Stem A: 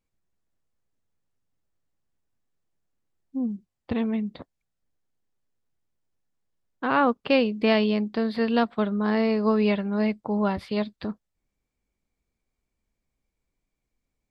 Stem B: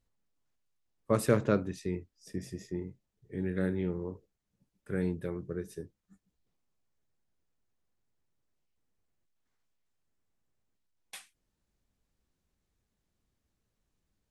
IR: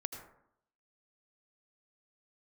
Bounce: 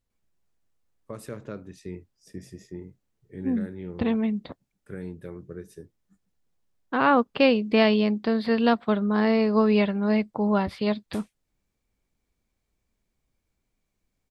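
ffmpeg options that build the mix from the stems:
-filter_complex "[0:a]adelay=100,volume=1.5dB[a];[1:a]alimiter=limit=-23.5dB:level=0:latency=1:release=385,volume=-2dB[b];[a][b]amix=inputs=2:normalize=0"

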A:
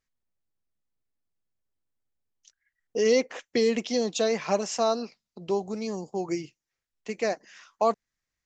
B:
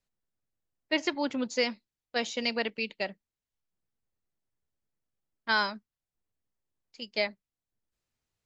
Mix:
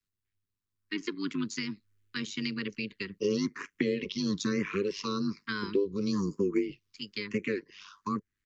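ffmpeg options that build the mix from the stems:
-filter_complex "[0:a]dynaudnorm=f=350:g=7:m=12.5dB,lowpass=4.3k,asplit=2[a][b];[b]afreqshift=1.1[c];[a][c]amix=inputs=2:normalize=1,adelay=250,volume=2dB[d];[1:a]dynaudnorm=f=220:g=13:m=6.5dB,volume=0dB[e];[d][e]amix=inputs=2:normalize=0,asuperstop=centerf=660:order=20:qfactor=1.2,tremolo=f=100:d=0.71,acrossover=split=98|380[f][g][h];[f]acompressor=threshold=-58dB:ratio=4[i];[g]acompressor=threshold=-28dB:ratio=4[j];[h]acompressor=threshold=-36dB:ratio=4[k];[i][j][k]amix=inputs=3:normalize=0"

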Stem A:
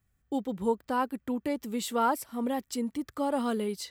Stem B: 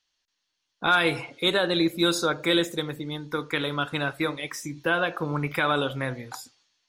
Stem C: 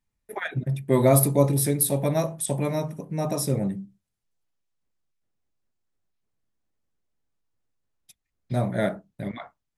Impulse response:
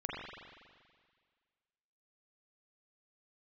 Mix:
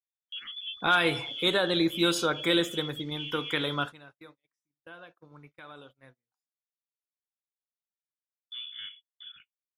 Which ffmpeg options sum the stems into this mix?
-filter_complex "[0:a]lowpass=f=2.6k:w=0.5412,lowpass=f=2.6k:w=1.3066,volume=-8.5dB[a];[1:a]volume=-2.5dB[b];[2:a]aecho=1:1:0.9:0.34,volume=-16dB,asplit=2[c][d];[d]apad=whole_len=303600[e];[b][e]sidechaingate=range=-21dB:threshold=-57dB:ratio=16:detection=peak[f];[a][c]amix=inputs=2:normalize=0,lowpass=f=3.1k:t=q:w=0.5098,lowpass=f=3.1k:t=q:w=0.6013,lowpass=f=3.1k:t=q:w=0.9,lowpass=f=3.1k:t=q:w=2.563,afreqshift=-3600,acompressor=threshold=-35dB:ratio=6,volume=0dB[g];[f][g]amix=inputs=2:normalize=0,agate=range=-32dB:threshold=-51dB:ratio=16:detection=peak"

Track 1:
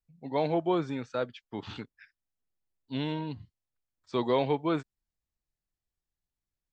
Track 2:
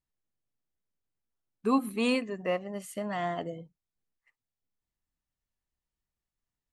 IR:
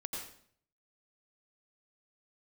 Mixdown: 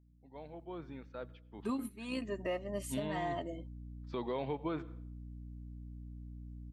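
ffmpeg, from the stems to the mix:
-filter_complex "[0:a]lowpass=3.5k,aeval=exprs='val(0)+0.00562*(sin(2*PI*60*n/s)+sin(2*PI*2*60*n/s)/2+sin(2*PI*3*60*n/s)/3+sin(2*PI*4*60*n/s)/4+sin(2*PI*5*60*n/s)/5)':c=same,volume=-3.5dB,afade=t=in:st=0.63:d=0.29:silence=0.398107,afade=t=in:st=1.95:d=0.63:silence=0.298538,asplit=3[a][b][c];[b]volume=-19.5dB[d];[1:a]bandreject=f=1.4k:w=5.1,aecho=1:1:3.2:0.65,aeval=exprs='val(0)+0.00141*(sin(2*PI*60*n/s)+sin(2*PI*2*60*n/s)/2+sin(2*PI*3*60*n/s)/3+sin(2*PI*4*60*n/s)/4+sin(2*PI*5*60*n/s)/5)':c=same,volume=-2dB[e];[c]apad=whole_len=296754[f];[e][f]sidechaingate=range=-16dB:threshold=-54dB:ratio=16:detection=peak[g];[2:a]atrim=start_sample=2205[h];[d][h]afir=irnorm=-1:irlink=0[i];[a][g][i]amix=inputs=3:normalize=0,alimiter=level_in=3dB:limit=-24dB:level=0:latency=1:release=206,volume=-3dB"

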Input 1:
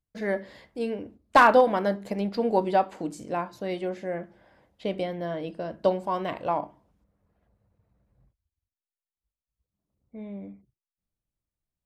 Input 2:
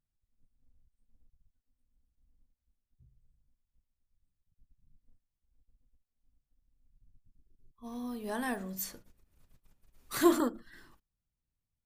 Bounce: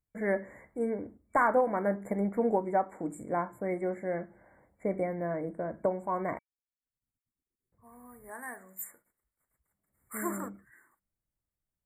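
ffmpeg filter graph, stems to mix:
-filter_complex "[0:a]volume=-1.5dB,asplit=3[a][b][c];[a]atrim=end=6.39,asetpts=PTS-STARTPTS,afade=t=out:st=6.386:d=0.004:c=hsin[d];[b]atrim=start=6.39:end=7.72,asetpts=PTS-STARTPTS,volume=0[e];[c]atrim=start=7.72,asetpts=PTS-STARTPTS,afade=t=in:d=0.004:c=hsin[f];[d][e][f]concat=n=3:v=0:a=1[g];[1:a]agate=range=-33dB:threshold=-60dB:ratio=3:detection=peak,highpass=f=1.2k:p=1,volume=-1.5dB[h];[g][h]amix=inputs=2:normalize=0,afftfilt=real='re*(1-between(b*sr/4096,2300,7000))':imag='im*(1-between(b*sr/4096,2300,7000))':win_size=4096:overlap=0.75,alimiter=limit=-17dB:level=0:latency=1:release=460"

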